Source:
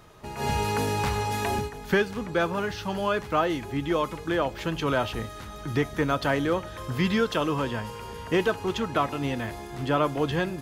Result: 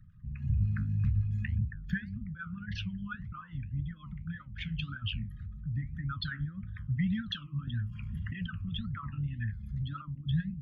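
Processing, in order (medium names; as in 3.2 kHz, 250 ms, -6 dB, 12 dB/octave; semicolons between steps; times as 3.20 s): resonances exaggerated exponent 3; inverse Chebyshev band-stop 340–910 Hz, stop band 50 dB; flange 1.8 Hz, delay 8.2 ms, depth 7.4 ms, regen +67%; 7.67–10.02 s: three bands compressed up and down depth 100%; trim +4 dB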